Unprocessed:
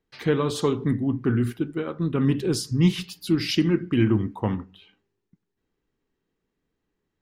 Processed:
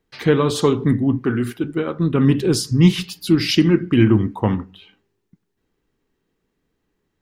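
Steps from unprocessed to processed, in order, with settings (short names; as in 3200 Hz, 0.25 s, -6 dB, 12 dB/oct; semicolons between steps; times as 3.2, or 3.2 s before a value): 1.19–1.64 low shelf 180 Hz -11.5 dB; gain +6.5 dB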